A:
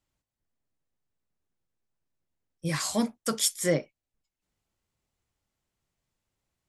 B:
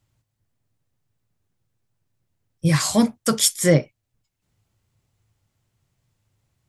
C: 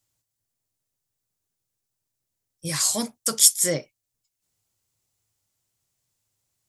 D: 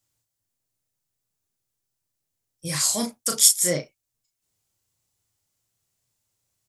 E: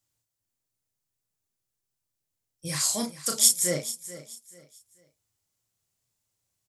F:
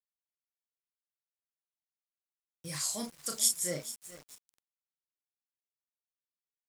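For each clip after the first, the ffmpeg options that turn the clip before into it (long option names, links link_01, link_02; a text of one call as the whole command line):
ffmpeg -i in.wav -af "equalizer=frequency=110:width=1.7:gain=14.5,volume=7.5dB" out.wav
ffmpeg -i in.wav -af "bass=frequency=250:gain=-8,treble=frequency=4000:gain=13,volume=-8dB" out.wav
ffmpeg -i in.wav -filter_complex "[0:a]asplit=2[link_01][link_02];[link_02]adelay=34,volume=-4.5dB[link_03];[link_01][link_03]amix=inputs=2:normalize=0,volume=-1dB" out.wav
ffmpeg -i in.wav -af "aecho=1:1:435|870|1305:0.178|0.0533|0.016,volume=-3.5dB" out.wav
ffmpeg -i in.wav -af "aeval=exprs='val(0)*gte(abs(val(0)),0.01)':channel_layout=same,volume=-8dB" out.wav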